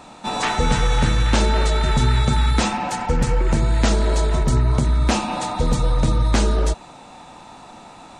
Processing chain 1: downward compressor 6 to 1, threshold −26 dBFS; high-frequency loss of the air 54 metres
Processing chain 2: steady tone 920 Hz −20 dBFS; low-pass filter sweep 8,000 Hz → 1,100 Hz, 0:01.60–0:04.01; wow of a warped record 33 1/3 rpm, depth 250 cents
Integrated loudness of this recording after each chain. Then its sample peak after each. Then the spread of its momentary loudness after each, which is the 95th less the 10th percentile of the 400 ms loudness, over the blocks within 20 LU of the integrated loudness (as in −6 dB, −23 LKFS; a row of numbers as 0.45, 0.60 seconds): −30.5, −16.0 LKFS; −17.0, −2.0 dBFS; 12, 4 LU